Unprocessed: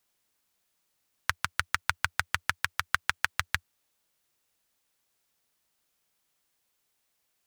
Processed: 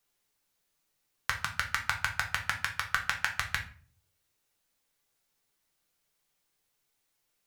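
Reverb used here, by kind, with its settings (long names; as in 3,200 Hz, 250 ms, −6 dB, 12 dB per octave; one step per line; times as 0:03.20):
rectangular room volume 34 cubic metres, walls mixed, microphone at 0.47 metres
level −3.5 dB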